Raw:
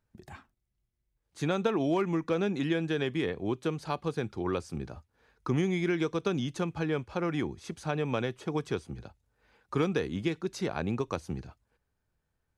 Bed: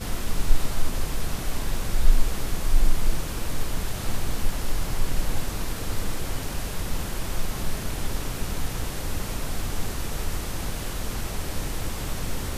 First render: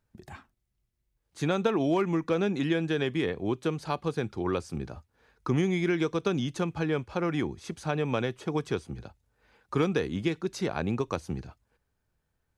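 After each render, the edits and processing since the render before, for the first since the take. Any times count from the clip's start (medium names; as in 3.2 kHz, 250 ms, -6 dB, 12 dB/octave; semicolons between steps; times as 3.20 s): trim +2 dB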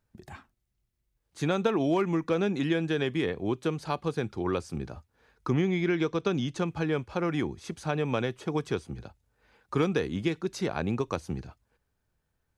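5.53–6.64 s: low-pass 4 kHz -> 8.9 kHz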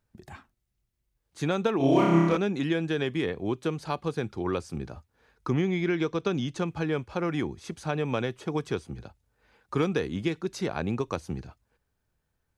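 1.77–2.37 s: flutter echo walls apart 5.1 m, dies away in 1.3 s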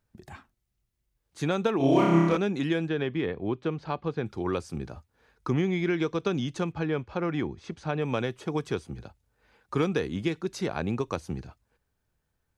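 2.88–4.26 s: distance through air 200 m; 6.72–8.02 s: distance through air 110 m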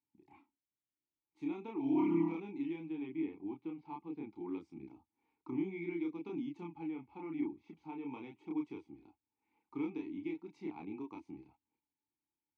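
vowel filter u; chorus voices 2, 0.47 Hz, delay 30 ms, depth 1.6 ms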